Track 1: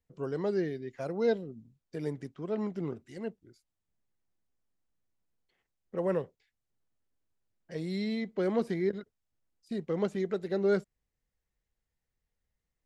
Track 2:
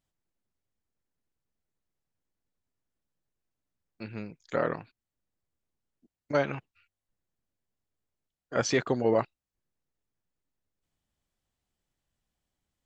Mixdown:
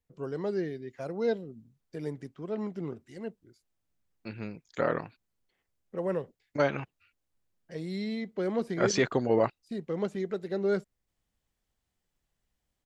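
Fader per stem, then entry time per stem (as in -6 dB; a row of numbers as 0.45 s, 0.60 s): -1.0 dB, 0.0 dB; 0.00 s, 0.25 s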